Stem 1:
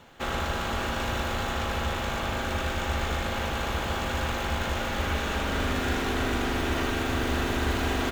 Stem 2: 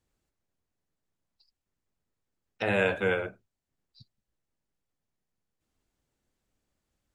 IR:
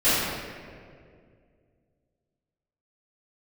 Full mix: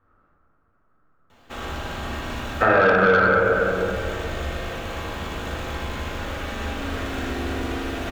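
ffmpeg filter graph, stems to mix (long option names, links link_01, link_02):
-filter_complex "[0:a]adelay=1300,volume=-5.5dB,asplit=2[link_01][link_02];[link_02]volume=-17.5dB[link_03];[1:a]acontrast=52,lowpass=frequency=1300:width_type=q:width=9.6,volume=2.5dB,asplit=3[link_04][link_05][link_06];[link_05]volume=-12.5dB[link_07];[link_06]apad=whole_len=415121[link_08];[link_01][link_08]sidechaincompress=threshold=-18dB:ratio=8:attack=16:release=1120[link_09];[2:a]atrim=start_sample=2205[link_10];[link_03][link_07]amix=inputs=2:normalize=0[link_11];[link_11][link_10]afir=irnorm=-1:irlink=0[link_12];[link_09][link_04][link_12]amix=inputs=3:normalize=0,asoftclip=type=tanh:threshold=-1dB,acompressor=threshold=-14dB:ratio=6"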